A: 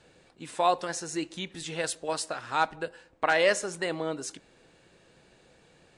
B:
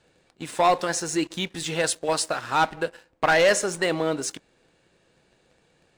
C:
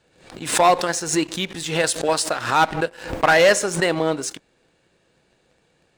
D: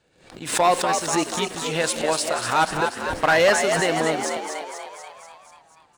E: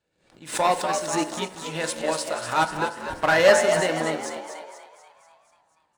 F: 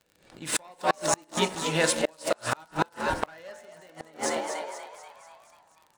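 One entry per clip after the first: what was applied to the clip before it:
leveller curve on the samples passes 2
harmonic generator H 7 −26 dB, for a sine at −11 dBFS; background raised ahead of every attack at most 100 dB per second; level +4 dB
echo with shifted repeats 243 ms, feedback 60%, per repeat +69 Hz, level −6 dB; level −3 dB
on a send at −6 dB: convolution reverb RT60 1.0 s, pre-delay 3 ms; on the sum: expander for the loud parts 1.5 to 1, over −37 dBFS
gate with flip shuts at −15 dBFS, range −33 dB; surface crackle 64 per second −48 dBFS; level +4.5 dB

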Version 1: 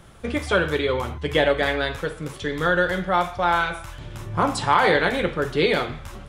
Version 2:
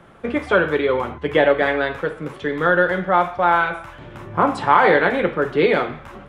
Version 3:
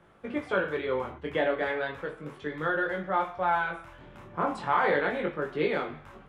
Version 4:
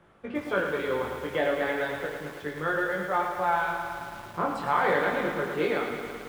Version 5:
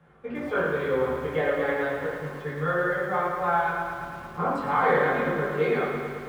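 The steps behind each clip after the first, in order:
three-way crossover with the lows and the highs turned down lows −13 dB, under 160 Hz, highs −16 dB, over 2,600 Hz; level +4.5 dB
chorus effect 0.36 Hz, delay 19.5 ms, depth 4.7 ms; level −8 dB
delay with a high-pass on its return 90 ms, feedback 62%, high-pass 1,500 Hz, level −12 dB; feedback echo at a low word length 110 ms, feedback 80%, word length 8 bits, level −7.5 dB
convolution reverb RT60 0.85 s, pre-delay 3 ms, DRR −5.5 dB; level −5 dB

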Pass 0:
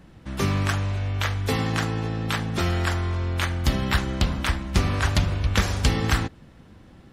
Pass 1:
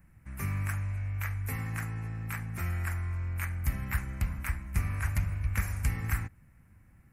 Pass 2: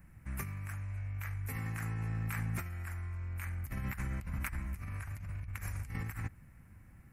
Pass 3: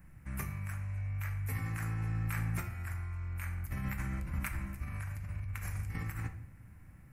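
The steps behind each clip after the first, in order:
drawn EQ curve 110 Hz 0 dB, 420 Hz −16 dB, 2,300 Hz 0 dB, 3,400 Hz −24 dB, 12,000 Hz +9 dB; level −7 dB
compressor whose output falls as the input rises −37 dBFS, ratio −1; level −2 dB
rectangular room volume 140 cubic metres, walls mixed, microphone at 0.44 metres

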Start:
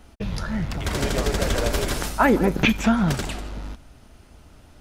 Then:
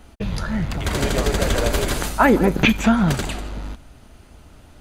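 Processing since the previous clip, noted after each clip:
notch filter 5,400 Hz, Q 10
level +3 dB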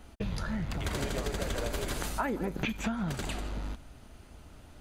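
downward compressor 6 to 1, threshold −24 dBFS, peak gain reduction 13 dB
level −5.5 dB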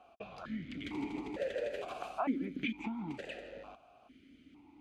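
formant filter that steps through the vowels 2.2 Hz
level +6.5 dB

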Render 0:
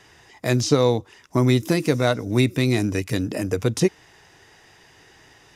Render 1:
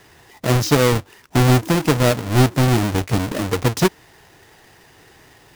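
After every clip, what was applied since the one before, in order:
each half-wave held at its own peak
level −1.5 dB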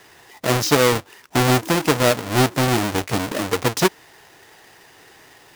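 low-shelf EQ 200 Hz −12 dB
level +2 dB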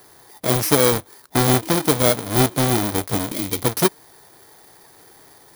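samples in bit-reversed order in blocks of 16 samples
gain on a spectral selection 0:03.32–0:03.63, 380–1,900 Hz −9 dB

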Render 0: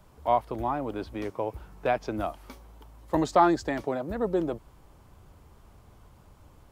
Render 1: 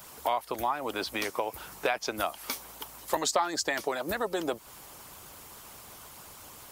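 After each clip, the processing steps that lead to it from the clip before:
harmonic and percussive parts rebalanced percussive +9 dB
spectral tilt +4 dB per octave
downward compressor 3 to 1, threshold −33 dBFS, peak gain reduction 17 dB
level +4 dB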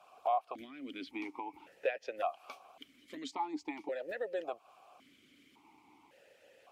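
formant filter that steps through the vowels 1.8 Hz
level +2 dB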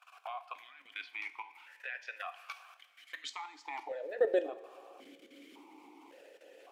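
high-pass filter sweep 1,600 Hz → 340 Hz, 0:03.44–0:04.25
output level in coarse steps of 16 dB
coupled-rooms reverb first 0.46 s, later 3 s, from −17 dB, DRR 9.5 dB
level +7 dB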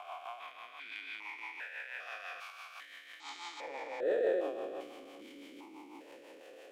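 spectrum averaged block by block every 400 ms
transient designer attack −8 dB, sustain +4 dB
rotating-speaker cabinet horn 6 Hz
level +8.5 dB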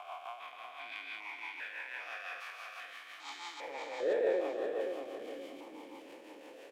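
repeating echo 528 ms, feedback 32%, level −6 dB

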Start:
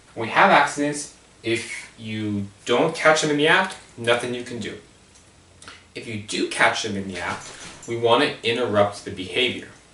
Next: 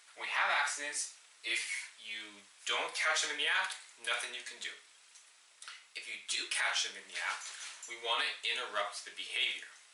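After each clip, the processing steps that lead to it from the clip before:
high-pass filter 1,400 Hz 12 dB per octave
brickwall limiter −16 dBFS, peak gain reduction 11 dB
level −5.5 dB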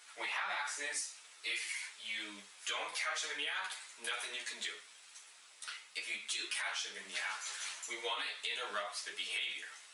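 downward compressor 6 to 1, threshold −39 dBFS, peak gain reduction 11.5 dB
string-ensemble chorus
level +6.5 dB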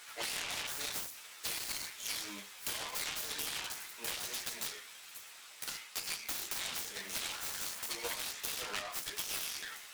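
phase distortion by the signal itself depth 0.78 ms
downward compressor, threshold −43 dBFS, peak gain reduction 9 dB
level +7.5 dB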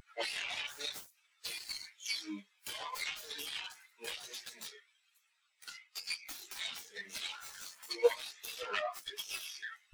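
every bin expanded away from the loudest bin 2.5 to 1
level +3 dB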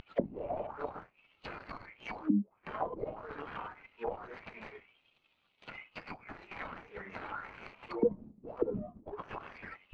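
running median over 25 samples
envelope-controlled low-pass 220–3,500 Hz down, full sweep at −40.5 dBFS
level +9.5 dB

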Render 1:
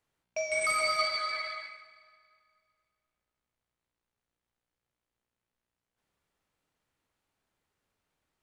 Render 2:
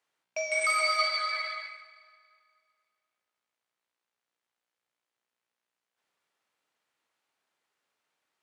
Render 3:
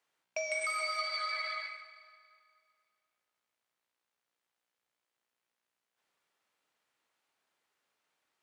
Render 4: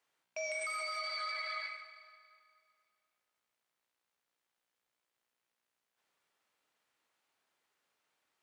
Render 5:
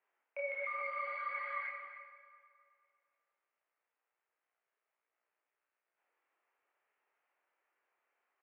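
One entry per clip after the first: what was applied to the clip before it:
meter weighting curve A; level +1.5 dB
downward compressor 6 to 1, threshold −32 dBFS, peak gain reduction 10 dB
brickwall limiter −30.5 dBFS, peak gain reduction 6.5 dB
multi-voice chorus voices 4, 0.7 Hz, delay 27 ms, depth 5 ms; far-end echo of a speakerphone 270 ms, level −10 dB; single-sideband voice off tune −63 Hz 440–2,600 Hz; level +3 dB

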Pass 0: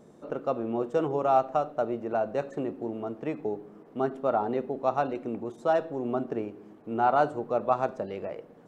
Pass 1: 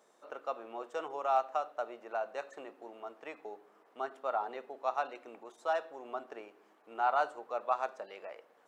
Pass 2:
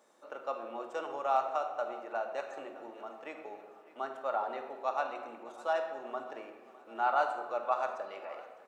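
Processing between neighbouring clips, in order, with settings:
high-pass filter 880 Hz 12 dB per octave; level −2 dB
repeating echo 604 ms, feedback 58%, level −19.5 dB; on a send at −4.5 dB: convolution reverb RT60 1.5 s, pre-delay 3 ms

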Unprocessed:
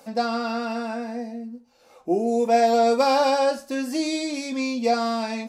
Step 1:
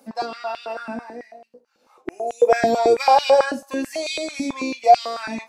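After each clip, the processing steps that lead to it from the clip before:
sub-octave generator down 2 octaves, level −3 dB
noise reduction from a noise print of the clip's start 7 dB
high-pass on a step sequencer 9.1 Hz 250–2,800 Hz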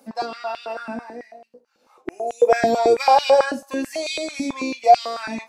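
no processing that can be heard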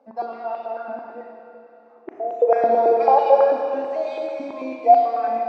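resonant band-pass 640 Hz, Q 1.3
high-frequency loss of the air 72 metres
four-comb reverb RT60 3 s, combs from 27 ms, DRR 2 dB

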